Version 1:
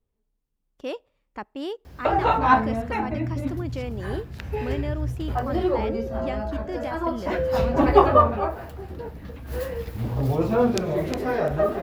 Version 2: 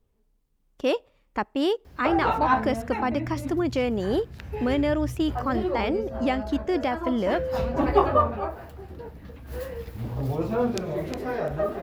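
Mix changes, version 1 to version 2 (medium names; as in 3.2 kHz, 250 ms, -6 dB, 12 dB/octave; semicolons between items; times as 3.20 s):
speech +8.0 dB; background -4.5 dB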